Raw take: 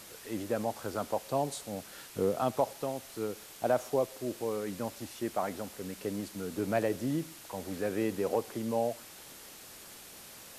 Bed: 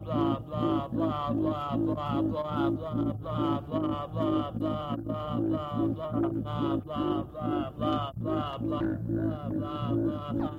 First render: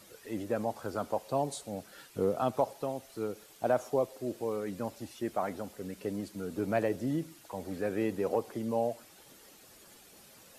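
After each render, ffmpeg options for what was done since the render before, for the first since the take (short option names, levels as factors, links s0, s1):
-af "afftdn=nr=9:nf=-50"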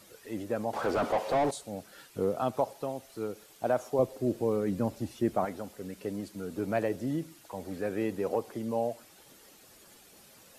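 -filter_complex "[0:a]asettb=1/sr,asplit=3[s0][s1][s2];[s0]atrim=end=0.734[s3];[s1]atrim=start=0.73:end=1.51,asetpts=PTS-STARTPTS,afade=t=in:d=0.004:c=qsin,afade=t=out:st=0.776:d=0.004:c=qsin,asplit=2[s4][s5];[s5]highpass=f=720:p=1,volume=28.2,asoftclip=type=tanh:threshold=0.126[s6];[s4][s6]amix=inputs=2:normalize=0,lowpass=f=1000:p=1,volume=0.501[s7];[s2]atrim=start=1.506[s8];[s3][s7]acrossfade=d=0.004:c1=hsin:c2=qsin[s9];[s9][s8]acrossfade=d=0.004:c1=qsin:c2=hsin,asettb=1/sr,asplit=3[s10][s11][s12];[s10]atrim=end=3.994[s13];[s11]atrim=start=3.99:end=5.45,asetpts=PTS-STARTPTS,afade=t=in:d=0.004:c=qsin,afade=t=out:st=1.456:d=0.004:c=qsin,lowshelf=f=430:g=10.5[s14];[s12]atrim=start=5.446[s15];[s13][s14]acrossfade=d=0.004:c1=hsin:c2=qsin[s16];[s16][s15]acrossfade=d=0.004:c1=qsin:c2=hsin"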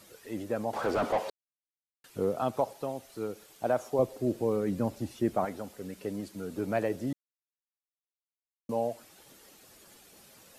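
-filter_complex "[0:a]asplit=5[s0][s1][s2][s3][s4];[s0]atrim=end=1.3,asetpts=PTS-STARTPTS,afade=t=out:st=1.296:d=0.004:c=hsin[s5];[s1]atrim=start=1.3:end=2.04,asetpts=PTS-STARTPTS,volume=0[s6];[s2]atrim=start=2.04:end=7.13,asetpts=PTS-STARTPTS,afade=t=in:d=0.004:c=hsin,afade=t=out:st=5.086:d=0.004:c=hsin[s7];[s3]atrim=start=7.13:end=8.69,asetpts=PTS-STARTPTS,volume=0[s8];[s4]atrim=start=8.69,asetpts=PTS-STARTPTS,afade=t=in:d=0.004:c=hsin[s9];[s5][s6][s7][s8][s9]concat=n=5:v=0:a=1"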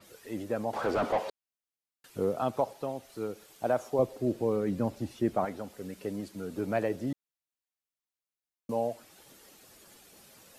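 -af "adynamicequalizer=threshold=0.00158:dfrequency=5700:dqfactor=0.7:tfrequency=5700:tqfactor=0.7:attack=5:release=100:ratio=0.375:range=2.5:mode=cutabove:tftype=highshelf"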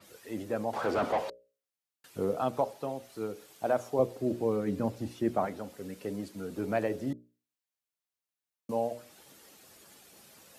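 -af "highpass=61,bandreject=f=60:t=h:w=6,bandreject=f=120:t=h:w=6,bandreject=f=180:t=h:w=6,bandreject=f=240:t=h:w=6,bandreject=f=300:t=h:w=6,bandreject=f=360:t=h:w=6,bandreject=f=420:t=h:w=6,bandreject=f=480:t=h:w=6,bandreject=f=540:t=h:w=6,bandreject=f=600:t=h:w=6"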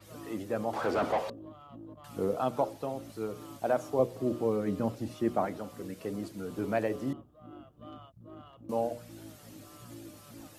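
-filter_complex "[1:a]volume=0.112[s0];[0:a][s0]amix=inputs=2:normalize=0"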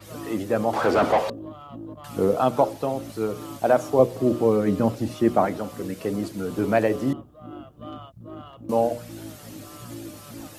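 -af "volume=2.99"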